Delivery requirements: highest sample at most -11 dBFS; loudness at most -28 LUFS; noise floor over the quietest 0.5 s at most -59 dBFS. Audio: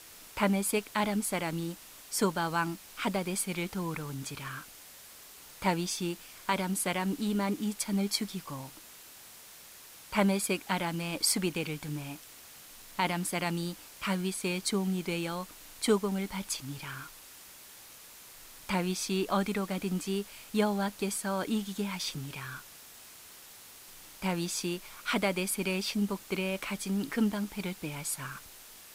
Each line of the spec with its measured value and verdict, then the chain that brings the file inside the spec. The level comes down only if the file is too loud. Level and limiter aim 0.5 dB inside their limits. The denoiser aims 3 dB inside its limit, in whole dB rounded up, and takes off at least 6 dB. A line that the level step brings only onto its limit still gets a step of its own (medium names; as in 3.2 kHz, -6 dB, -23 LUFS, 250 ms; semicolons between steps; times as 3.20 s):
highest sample -13.0 dBFS: pass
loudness -32.5 LUFS: pass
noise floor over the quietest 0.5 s -51 dBFS: fail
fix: noise reduction 11 dB, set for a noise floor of -51 dBFS